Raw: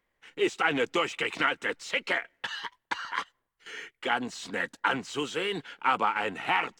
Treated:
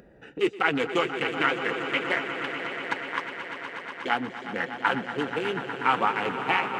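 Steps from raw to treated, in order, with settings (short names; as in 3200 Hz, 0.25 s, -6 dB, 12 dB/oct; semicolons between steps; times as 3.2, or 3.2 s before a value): Wiener smoothing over 41 samples; HPF 69 Hz; swelling echo 0.121 s, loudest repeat 5, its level -12.5 dB; flange 1.8 Hz, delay 4.6 ms, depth 2.8 ms, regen -55%; upward compressor, threshold -39 dBFS; gain +7 dB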